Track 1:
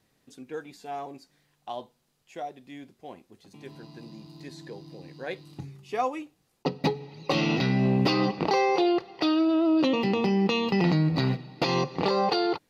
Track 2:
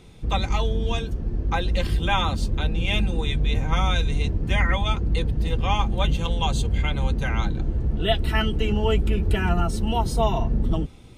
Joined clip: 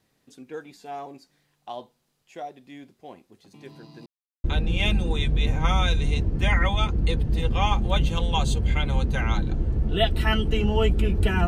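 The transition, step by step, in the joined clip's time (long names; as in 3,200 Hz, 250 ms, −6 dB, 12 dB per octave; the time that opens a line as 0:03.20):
track 1
0:04.06–0:04.44: silence
0:04.44: continue with track 2 from 0:02.52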